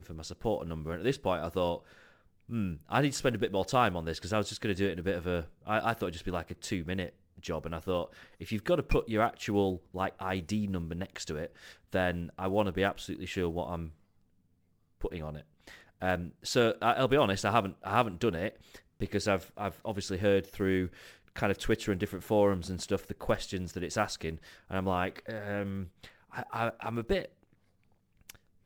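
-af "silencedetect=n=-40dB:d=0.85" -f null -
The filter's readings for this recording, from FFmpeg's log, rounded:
silence_start: 13.88
silence_end: 15.01 | silence_duration: 1.14
silence_start: 27.26
silence_end: 28.30 | silence_duration: 1.04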